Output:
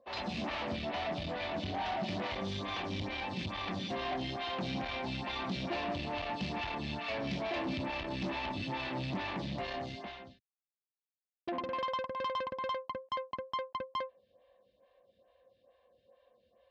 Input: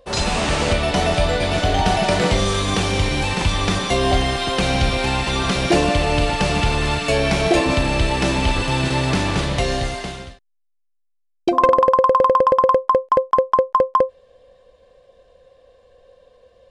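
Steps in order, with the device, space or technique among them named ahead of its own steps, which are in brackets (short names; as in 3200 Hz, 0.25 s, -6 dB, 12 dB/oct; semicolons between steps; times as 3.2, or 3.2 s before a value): vibe pedal into a guitar amplifier (photocell phaser 2.3 Hz; tube stage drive 23 dB, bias 0.45; speaker cabinet 97–4400 Hz, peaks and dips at 150 Hz -4 dB, 220 Hz +4 dB, 450 Hz -10 dB, 1400 Hz -6 dB); gain -7.5 dB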